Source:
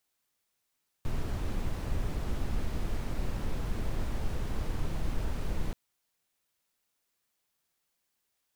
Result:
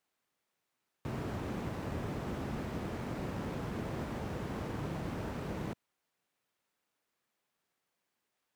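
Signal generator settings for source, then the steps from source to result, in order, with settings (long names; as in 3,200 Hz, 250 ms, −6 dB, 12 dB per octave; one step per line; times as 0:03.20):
noise brown, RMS −30 dBFS 4.68 s
high-pass filter 130 Hz 12 dB per octave
high-shelf EQ 4,900 Hz −9.5 dB
in parallel at −9 dB: sample-rate reduction 6,600 Hz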